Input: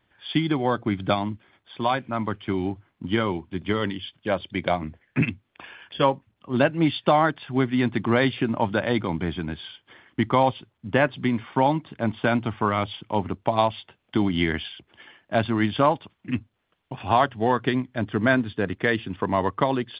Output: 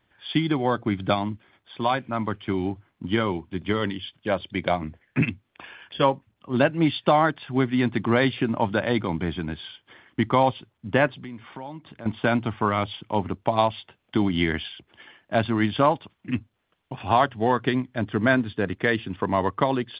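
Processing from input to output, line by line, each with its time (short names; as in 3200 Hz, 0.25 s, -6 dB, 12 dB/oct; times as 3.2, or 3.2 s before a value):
11.12–12.06 compressor 2.5:1, threshold -41 dBFS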